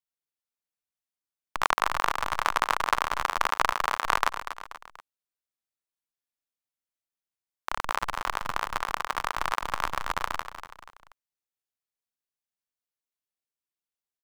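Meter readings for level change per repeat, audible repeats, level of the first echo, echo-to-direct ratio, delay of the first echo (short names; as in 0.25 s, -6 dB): -7.0 dB, 3, -11.0 dB, -10.0 dB, 0.241 s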